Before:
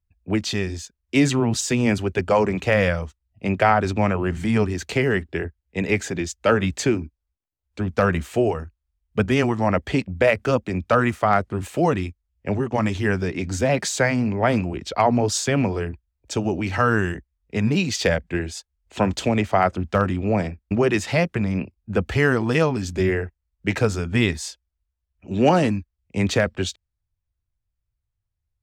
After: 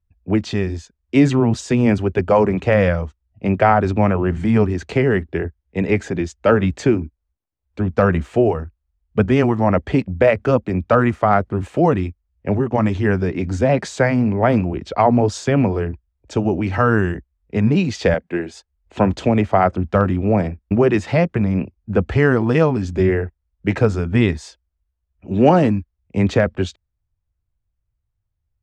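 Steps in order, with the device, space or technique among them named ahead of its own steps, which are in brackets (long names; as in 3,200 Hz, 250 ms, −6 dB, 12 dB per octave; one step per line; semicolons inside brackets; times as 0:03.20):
through cloth (low-pass filter 8,800 Hz 12 dB per octave; high-shelf EQ 2,300 Hz −13 dB)
0:18.14–0:18.54: high-pass filter 220 Hz 12 dB per octave
level +5 dB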